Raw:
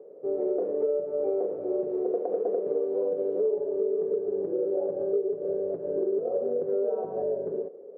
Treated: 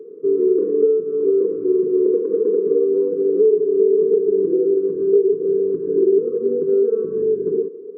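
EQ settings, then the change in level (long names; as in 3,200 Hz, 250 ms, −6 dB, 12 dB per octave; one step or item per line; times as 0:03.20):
linear-phase brick-wall band-stop 490–1,000 Hz
parametric band 300 Hz +13.5 dB 2.8 octaves
0.0 dB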